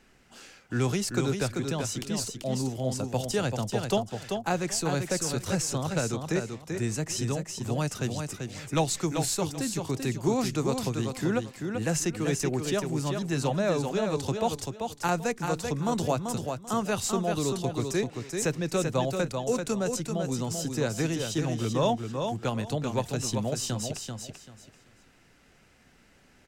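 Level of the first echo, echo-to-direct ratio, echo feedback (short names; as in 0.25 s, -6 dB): -5.5 dB, -5.5 dB, 23%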